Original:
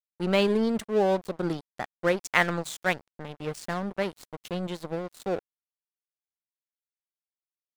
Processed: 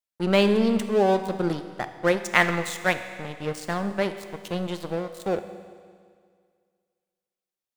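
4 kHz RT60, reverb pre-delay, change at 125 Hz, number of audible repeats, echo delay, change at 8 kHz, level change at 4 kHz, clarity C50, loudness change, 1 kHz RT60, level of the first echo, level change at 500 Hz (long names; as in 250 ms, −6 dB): 1.9 s, 10 ms, +3.5 dB, no echo audible, no echo audible, +3.5 dB, +3.5 dB, 10.0 dB, +3.5 dB, 2.0 s, no echo audible, +3.0 dB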